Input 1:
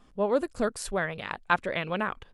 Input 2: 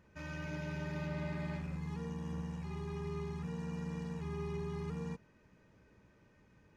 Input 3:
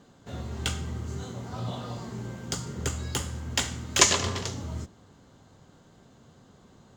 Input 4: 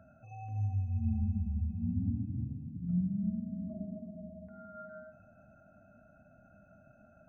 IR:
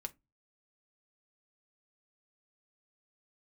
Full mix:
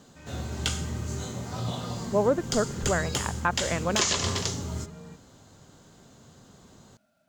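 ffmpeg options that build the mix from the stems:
-filter_complex "[0:a]lowpass=1800,adelay=1950,volume=3dB[link_01];[1:a]volume=-4.5dB[link_02];[2:a]acrossover=split=6200[link_03][link_04];[link_04]acompressor=threshold=-43dB:ratio=4:attack=1:release=60[link_05];[link_03][link_05]amix=inputs=2:normalize=0,bass=frequency=250:gain=0,treble=frequency=4000:gain=8,volume=1.5dB[link_06];[3:a]highpass=160,acrusher=bits=10:mix=0:aa=0.000001,volume=-9.5dB[link_07];[link_01][link_02][link_06][link_07]amix=inputs=4:normalize=0,alimiter=limit=-12.5dB:level=0:latency=1:release=159"

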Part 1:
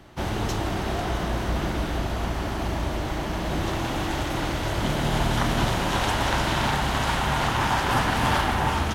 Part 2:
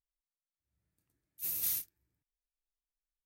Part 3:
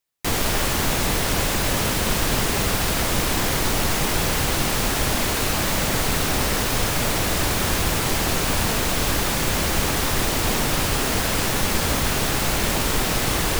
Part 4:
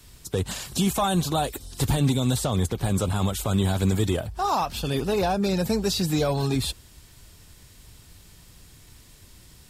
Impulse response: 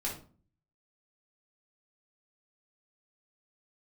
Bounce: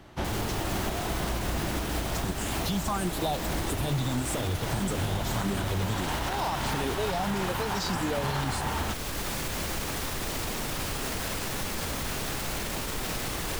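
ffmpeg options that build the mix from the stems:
-filter_complex "[0:a]volume=-1.5dB[link_01];[2:a]alimiter=limit=-15.5dB:level=0:latency=1,volume=-7dB[link_02];[3:a]asplit=2[link_03][link_04];[link_04]afreqshift=1.6[link_05];[link_03][link_05]amix=inputs=2:normalize=1,adelay=1900,volume=3dB[link_06];[link_01][link_02][link_06]amix=inputs=3:normalize=0,alimiter=limit=-19.5dB:level=0:latency=1:release=364"

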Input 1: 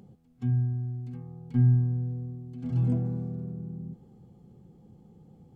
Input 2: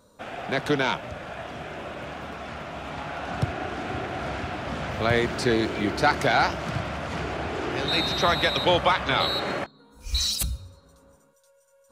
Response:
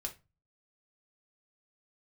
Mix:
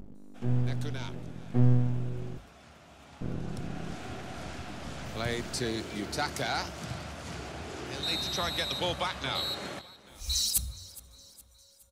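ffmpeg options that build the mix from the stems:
-filter_complex "[0:a]aeval=exprs='val(0)+0.00891*(sin(2*PI*50*n/s)+sin(2*PI*2*50*n/s)/2+sin(2*PI*3*50*n/s)/3+sin(2*PI*4*50*n/s)/4+sin(2*PI*5*50*n/s)/5)':channel_layout=same,aeval=exprs='max(val(0),0)':channel_layout=same,volume=3dB,asplit=3[link_01][link_02][link_03];[link_01]atrim=end=2.38,asetpts=PTS-STARTPTS,afade=type=out:start_time=2.376:duration=0.004:curve=hsin[link_04];[link_02]atrim=start=2.38:end=3.21,asetpts=PTS-STARTPTS,volume=0[link_05];[link_03]atrim=start=3.21,asetpts=PTS-STARTPTS,afade=type=in:duration=0.004:curve=hsin[link_06];[link_04][link_05][link_06]concat=n=3:v=0:a=1[link_07];[1:a]bass=frequency=250:gain=5,treble=frequency=4000:gain=14,adelay=150,volume=-12dB,afade=type=in:start_time=3.44:duration=0.54:silence=0.421697,asplit=2[link_08][link_09];[link_09]volume=-19.5dB,aecho=0:1:416|832|1248|1664|2080|2496|2912:1|0.51|0.26|0.133|0.0677|0.0345|0.0176[link_10];[link_07][link_08][link_10]amix=inputs=3:normalize=0,bandreject=frequency=50:width_type=h:width=6,bandreject=frequency=100:width_type=h:width=6,bandreject=frequency=150:width_type=h:width=6"

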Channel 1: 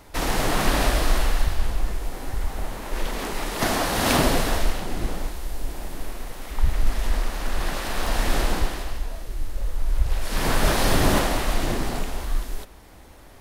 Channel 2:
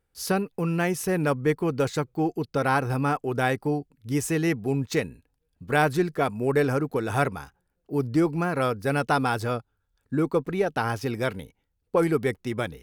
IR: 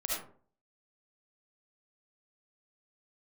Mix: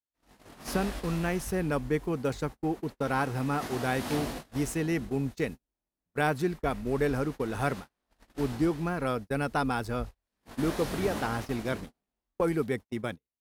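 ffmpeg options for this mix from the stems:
-filter_complex "[0:a]flanger=delay=19.5:depth=3:speed=2.5,volume=-12.5dB[link_01];[1:a]adelay=450,volume=-6dB[link_02];[link_01][link_02]amix=inputs=2:normalize=0,highpass=45,agate=range=-41dB:threshold=-36dB:ratio=16:detection=peak,equalizer=frequency=230:width_type=o:width=0.52:gain=5"

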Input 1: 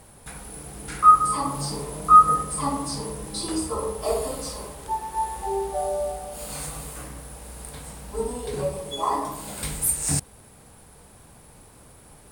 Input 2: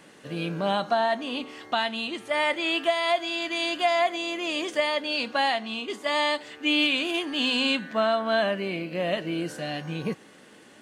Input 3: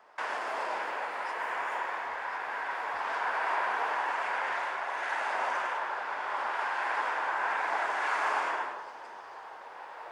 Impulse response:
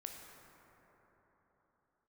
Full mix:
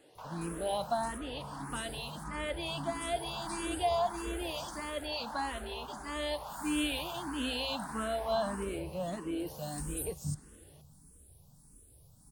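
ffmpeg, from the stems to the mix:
-filter_complex "[0:a]acrossover=split=380[link_01][link_02];[link_02]acompressor=threshold=-33dB:ratio=4[link_03];[link_01][link_03]amix=inputs=2:normalize=0,equalizer=frequency=1000:width=0.32:gain=-14,adelay=150,volume=-5.5dB,asplit=2[link_04][link_05];[link_05]volume=-8dB[link_06];[1:a]volume=-5dB[link_07];[2:a]volume=-8dB[link_08];[3:a]atrim=start_sample=2205[link_09];[link_06][link_09]afir=irnorm=-1:irlink=0[link_10];[link_04][link_07][link_08][link_10]amix=inputs=4:normalize=0,equalizer=frequency=2100:width=1.3:gain=-10.5,asplit=2[link_11][link_12];[link_12]afreqshift=1.6[link_13];[link_11][link_13]amix=inputs=2:normalize=1"

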